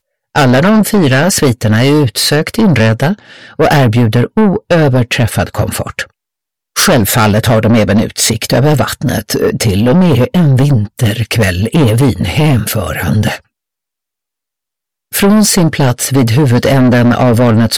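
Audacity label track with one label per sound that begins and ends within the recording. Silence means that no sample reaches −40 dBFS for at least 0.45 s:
6.760000	13.400000	sound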